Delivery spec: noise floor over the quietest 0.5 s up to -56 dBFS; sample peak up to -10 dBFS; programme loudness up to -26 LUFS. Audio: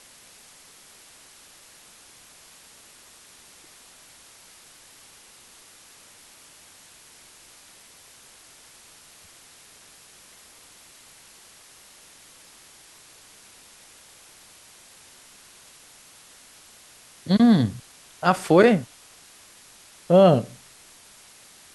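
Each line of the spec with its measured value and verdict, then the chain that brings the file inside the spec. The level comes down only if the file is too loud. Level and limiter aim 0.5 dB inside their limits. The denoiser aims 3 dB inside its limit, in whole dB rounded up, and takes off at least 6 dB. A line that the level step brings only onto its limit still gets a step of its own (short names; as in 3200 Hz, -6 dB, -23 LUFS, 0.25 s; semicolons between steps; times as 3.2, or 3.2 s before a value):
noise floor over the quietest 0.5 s -51 dBFS: fail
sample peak -5.5 dBFS: fail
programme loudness -19.0 LUFS: fail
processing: gain -7.5 dB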